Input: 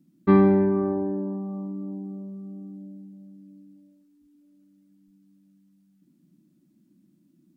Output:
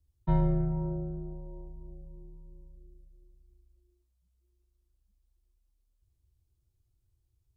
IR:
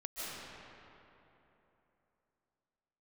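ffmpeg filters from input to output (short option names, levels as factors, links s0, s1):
-af "equalizer=f=125:t=o:w=1:g=10,equalizer=f=250:t=o:w=1:g=-12,equalizer=f=500:t=o:w=1:g=9,equalizer=f=2000:t=o:w=1:g=-8,afreqshift=-230,volume=0.422"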